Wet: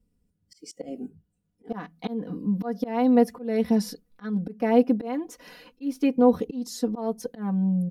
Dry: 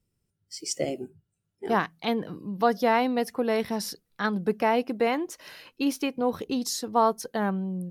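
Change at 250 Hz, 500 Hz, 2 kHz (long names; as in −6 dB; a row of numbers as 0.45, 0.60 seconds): +5.0, +0.5, −9.5 decibels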